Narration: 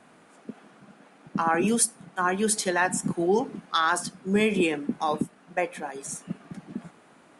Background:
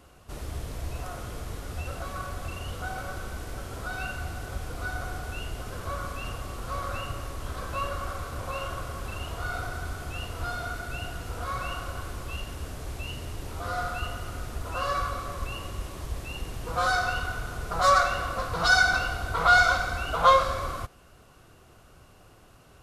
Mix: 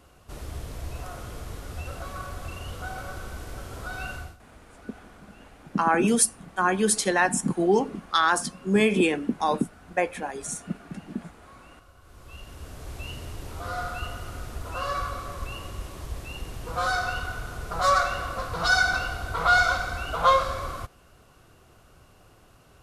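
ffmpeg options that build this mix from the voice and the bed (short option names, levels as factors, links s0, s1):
-filter_complex "[0:a]adelay=4400,volume=1.26[s0];[1:a]volume=7.08,afade=t=out:st=4.15:d=0.22:silence=0.125893,afade=t=in:st=12.01:d=1.04:silence=0.125893[s1];[s0][s1]amix=inputs=2:normalize=0"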